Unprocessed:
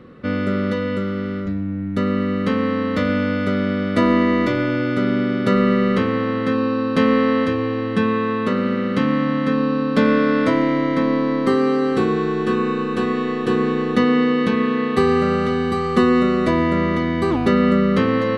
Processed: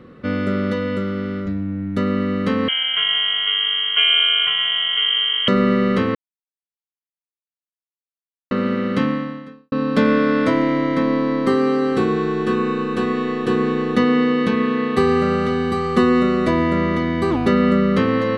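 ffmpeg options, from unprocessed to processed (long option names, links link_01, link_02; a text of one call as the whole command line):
ffmpeg -i in.wav -filter_complex "[0:a]asettb=1/sr,asplit=3[link_01][link_02][link_03];[link_01]atrim=end=2.684[link_04];[link_02]atrim=start=2.68:end=5.48,asetpts=PTS-STARTPTS,afade=type=in:duration=0.004:curve=qsin,afade=type=out:start_time=2.796:duration=0.004:curve=qsin,lowpass=frequency=2900:width_type=q:width=0.5098,lowpass=frequency=2900:width_type=q:width=0.6013,lowpass=frequency=2900:width_type=q:width=0.9,lowpass=frequency=2900:width_type=q:width=2.563,afreqshift=-3400[link_05];[link_03]atrim=start=5.476[link_06];[link_04][link_05]acrossfade=duration=0.004:curve1=hsin:curve2=qsin[link_07];[link_07][link_06]acrossfade=duration=0.004:curve1=qsin:curve2=hsin,asplit=4[link_08][link_09][link_10][link_11];[link_08]atrim=end=6.15,asetpts=PTS-STARTPTS,afade=type=out:start_time=6.146:duration=0.004:curve=hsin[link_12];[link_09]atrim=start=6.15:end=8.51,asetpts=PTS-STARTPTS,volume=0[link_13];[link_10]atrim=start=8.51:end=9.72,asetpts=PTS-STARTPTS,afade=type=in:duration=0.004:curve=hsin,afade=type=out:start_time=0.52:duration=0.69:curve=qua[link_14];[link_11]atrim=start=9.72,asetpts=PTS-STARTPTS,afade=type=in:duration=0.004:curve=hsin[link_15];[link_12][link_13][link_14][link_15]concat=n=4:v=0:a=1" out.wav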